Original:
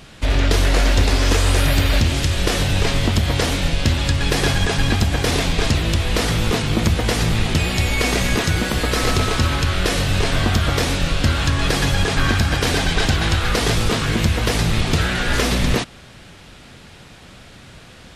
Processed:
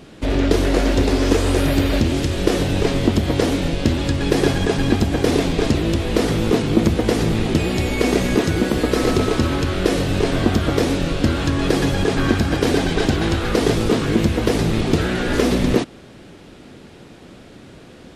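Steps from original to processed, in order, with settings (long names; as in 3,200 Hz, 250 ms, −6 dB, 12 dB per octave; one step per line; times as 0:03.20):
parametric band 330 Hz +13.5 dB 1.9 octaves
level −5.5 dB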